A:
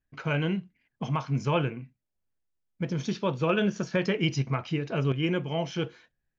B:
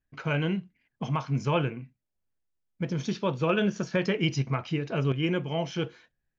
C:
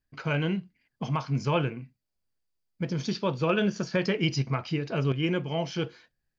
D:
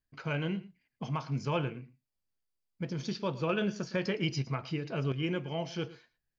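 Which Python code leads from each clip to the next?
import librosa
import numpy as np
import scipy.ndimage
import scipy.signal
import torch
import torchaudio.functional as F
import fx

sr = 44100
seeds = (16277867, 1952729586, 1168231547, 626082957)

y1 = x
y2 = fx.peak_eq(y1, sr, hz=4700.0, db=10.5, octaves=0.22)
y3 = y2 + 10.0 ** (-18.0 / 20.0) * np.pad(y2, (int(112 * sr / 1000.0), 0))[:len(y2)]
y3 = y3 * 10.0 ** (-5.5 / 20.0)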